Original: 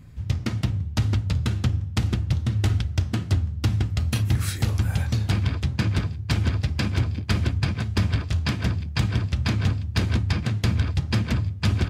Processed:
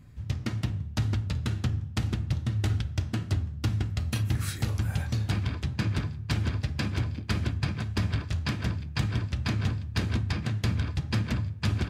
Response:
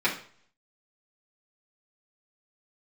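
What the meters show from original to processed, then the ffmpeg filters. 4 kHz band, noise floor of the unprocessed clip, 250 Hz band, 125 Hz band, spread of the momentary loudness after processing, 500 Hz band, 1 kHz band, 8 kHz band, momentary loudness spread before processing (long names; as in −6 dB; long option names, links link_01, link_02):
−5.0 dB, −34 dBFS, −4.5 dB, −5.5 dB, 3 LU, −5.0 dB, −4.0 dB, −5.0 dB, 2 LU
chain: -filter_complex "[0:a]asplit=2[link_01][link_02];[1:a]atrim=start_sample=2205,asetrate=32634,aresample=44100[link_03];[link_02][link_03]afir=irnorm=-1:irlink=0,volume=-24.5dB[link_04];[link_01][link_04]amix=inputs=2:normalize=0,volume=-5.5dB"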